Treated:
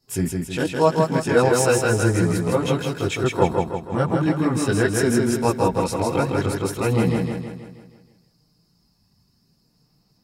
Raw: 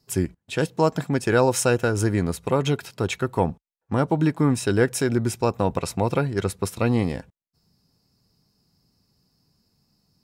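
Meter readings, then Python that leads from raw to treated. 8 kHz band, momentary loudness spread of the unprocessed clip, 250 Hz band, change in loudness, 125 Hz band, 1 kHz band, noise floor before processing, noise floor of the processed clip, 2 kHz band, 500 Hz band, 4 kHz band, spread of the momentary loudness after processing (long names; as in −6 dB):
+2.5 dB, 7 LU, +2.5 dB, +2.5 dB, +1.5 dB, +3.5 dB, −81 dBFS, −64 dBFS, +3.0 dB, +3.0 dB, +2.5 dB, 7 LU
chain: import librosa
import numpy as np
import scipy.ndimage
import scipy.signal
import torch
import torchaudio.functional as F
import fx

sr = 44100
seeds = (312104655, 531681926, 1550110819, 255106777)

p1 = fx.chorus_voices(x, sr, voices=4, hz=0.37, base_ms=20, depth_ms=3.4, mix_pct=60)
p2 = p1 + fx.echo_feedback(p1, sr, ms=160, feedback_pct=50, wet_db=-3.5, dry=0)
y = p2 * 10.0 ** (3.5 / 20.0)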